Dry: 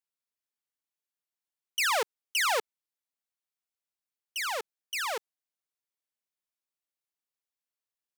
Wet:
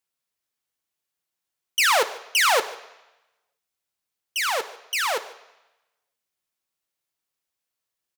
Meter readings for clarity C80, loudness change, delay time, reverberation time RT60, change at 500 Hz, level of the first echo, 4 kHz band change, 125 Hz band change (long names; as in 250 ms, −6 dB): 16.5 dB, +8.0 dB, 150 ms, 0.95 s, +8.0 dB, −21.5 dB, +8.0 dB, can't be measured